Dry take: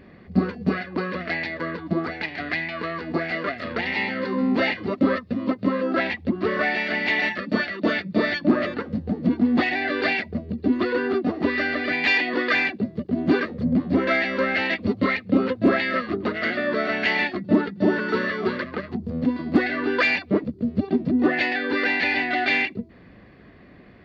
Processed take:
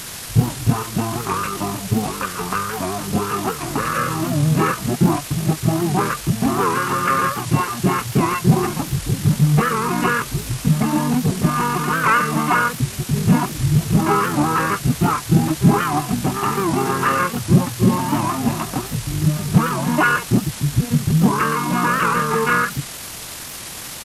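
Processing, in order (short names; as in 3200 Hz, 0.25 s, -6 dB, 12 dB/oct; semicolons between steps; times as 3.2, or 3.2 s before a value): added noise white -37 dBFS; pitch shift -8.5 st; record warp 78 rpm, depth 160 cents; gain +5 dB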